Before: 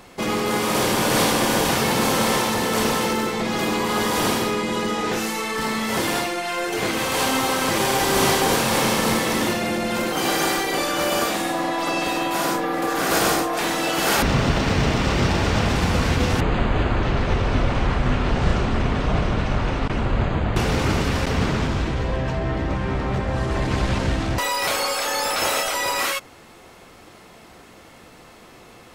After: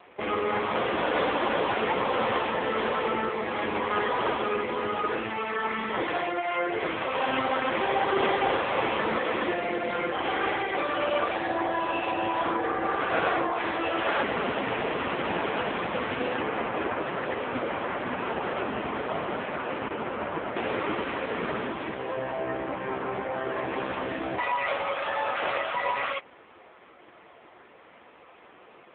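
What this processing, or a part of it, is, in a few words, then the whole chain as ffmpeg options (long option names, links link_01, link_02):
telephone: -af "highpass=340,lowpass=3000" -ar 8000 -c:a libopencore_amrnb -b:a 5900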